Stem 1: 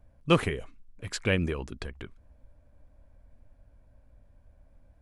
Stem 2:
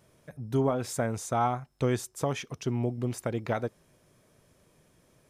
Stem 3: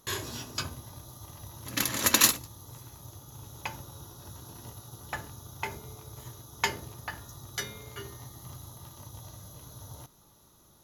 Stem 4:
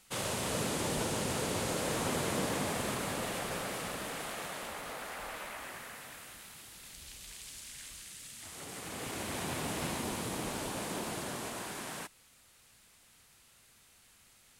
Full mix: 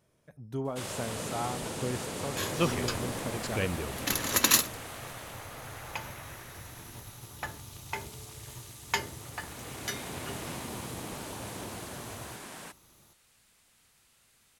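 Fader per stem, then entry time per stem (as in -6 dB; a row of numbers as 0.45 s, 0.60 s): -6.0 dB, -8.0 dB, -1.5 dB, -3.0 dB; 2.30 s, 0.00 s, 2.30 s, 0.65 s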